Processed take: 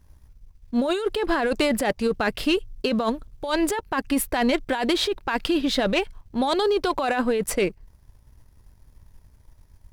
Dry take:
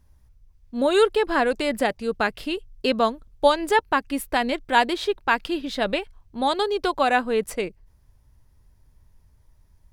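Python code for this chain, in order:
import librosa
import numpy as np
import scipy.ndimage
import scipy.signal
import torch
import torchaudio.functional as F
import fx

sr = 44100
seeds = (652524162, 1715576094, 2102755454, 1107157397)

y = fx.over_compress(x, sr, threshold_db=-25.0, ratio=-1.0)
y = fx.leveller(y, sr, passes=1)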